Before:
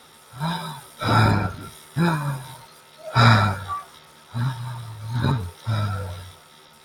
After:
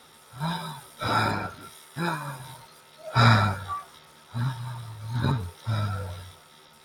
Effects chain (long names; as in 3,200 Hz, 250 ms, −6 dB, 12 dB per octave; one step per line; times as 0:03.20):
0:01.07–0:02.40: low-shelf EQ 220 Hz −12 dB
level −3.5 dB